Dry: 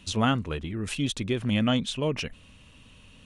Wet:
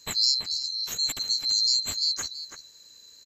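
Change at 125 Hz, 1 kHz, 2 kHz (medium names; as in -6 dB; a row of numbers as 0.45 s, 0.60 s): under -20 dB, -14.5 dB, -9.0 dB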